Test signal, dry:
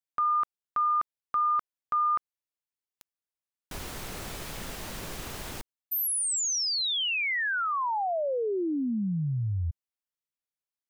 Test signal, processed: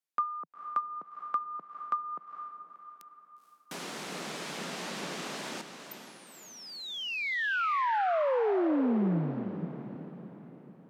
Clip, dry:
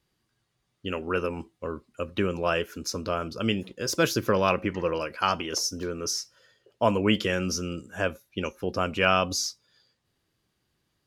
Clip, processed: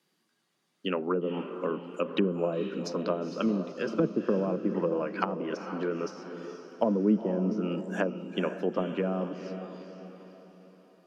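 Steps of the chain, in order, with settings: in parallel at +1 dB: gain riding within 3 dB 2 s; on the sum: steep high-pass 160 Hz 48 dB/octave; low-pass that closes with the level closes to 400 Hz, closed at -16 dBFS; echo that smears into a reverb 481 ms, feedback 46%, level -9 dB; trim -5.5 dB

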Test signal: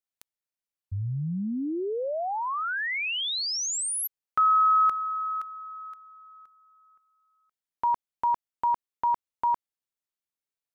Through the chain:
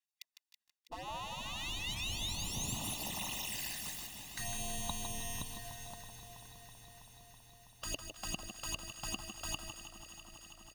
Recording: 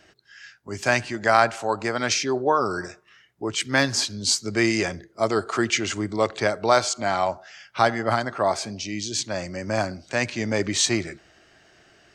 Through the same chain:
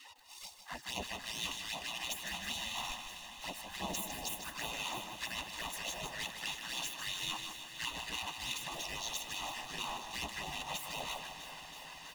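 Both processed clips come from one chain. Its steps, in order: square wave that keeps the level; RIAA curve playback; band-stop 2.2 kHz, Q 6.2; spectral gate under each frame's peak -25 dB weak; comb 1.1 ms, depth 59%; reverse; compression 20:1, threshold -44 dBFS; reverse; touch-sensitive flanger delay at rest 3.7 ms, full sweep at -45 dBFS; LFO notch sine 2.4 Hz 380–1700 Hz; on a send: echo whose repeats swap between lows and highs 163 ms, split 1.4 kHz, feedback 90%, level -11 dB; on the sum: bit-crushed delay 154 ms, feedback 35%, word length 12-bit, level -8 dB; trim +11.5 dB

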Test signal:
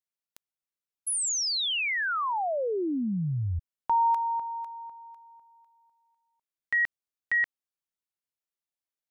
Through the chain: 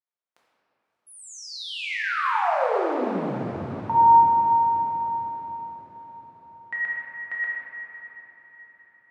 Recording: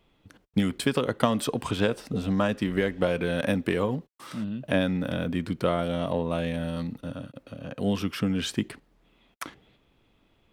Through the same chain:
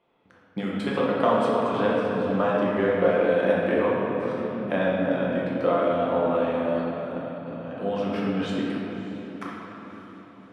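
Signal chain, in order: band-pass filter 810 Hz, Q 0.73; echo that smears into a reverb 586 ms, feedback 53%, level -14.5 dB; simulated room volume 170 m³, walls hard, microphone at 0.87 m

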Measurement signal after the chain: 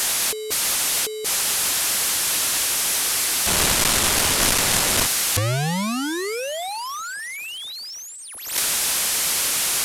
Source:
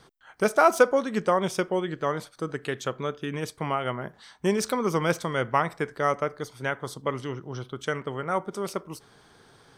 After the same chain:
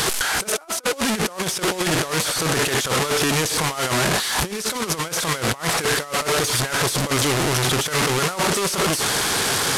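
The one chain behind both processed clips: one-bit delta coder 64 kbps, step -23.5 dBFS; tilt EQ +1.5 dB/octave; compressor with a negative ratio -30 dBFS, ratio -0.5; trim +8 dB

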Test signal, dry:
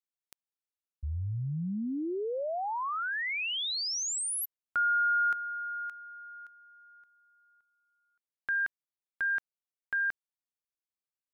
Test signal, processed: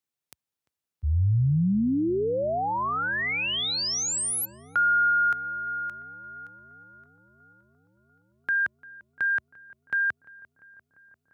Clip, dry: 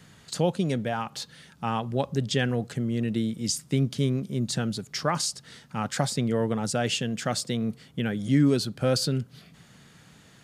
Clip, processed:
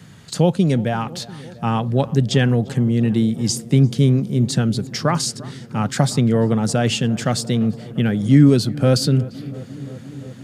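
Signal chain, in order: high-pass 75 Hz 24 dB/octave; bass shelf 270 Hz +8 dB; on a send: filtered feedback delay 346 ms, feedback 83%, low-pass 1.9 kHz, level -19.5 dB; on the sum: trim +5 dB

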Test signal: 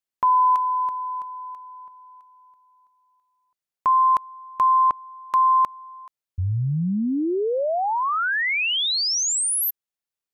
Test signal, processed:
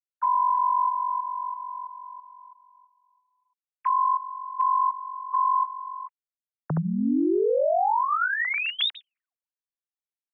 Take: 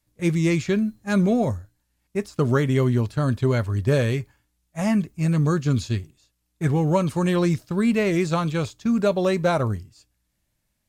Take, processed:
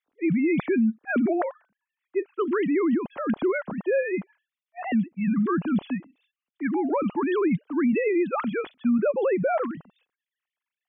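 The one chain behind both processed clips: formants replaced by sine waves; peak limiter -16.5 dBFS

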